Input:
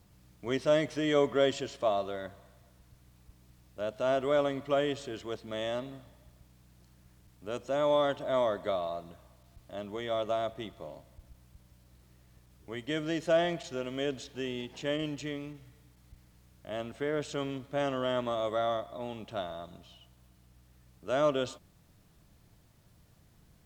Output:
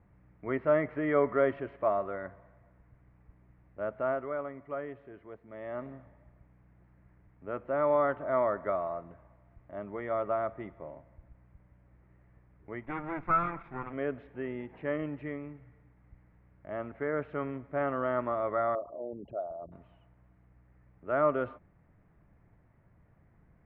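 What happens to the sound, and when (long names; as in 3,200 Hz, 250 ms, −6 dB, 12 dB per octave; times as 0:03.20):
0:04.00–0:05.87: duck −9 dB, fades 0.42 s quadratic
0:12.83–0:13.93: lower of the sound and its delayed copy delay 0.84 ms
0:18.75–0:19.72: spectral envelope exaggerated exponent 3
whole clip: Chebyshev low-pass filter 2,100 Hz, order 4; dynamic equaliser 1,300 Hz, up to +7 dB, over −53 dBFS, Q 3.3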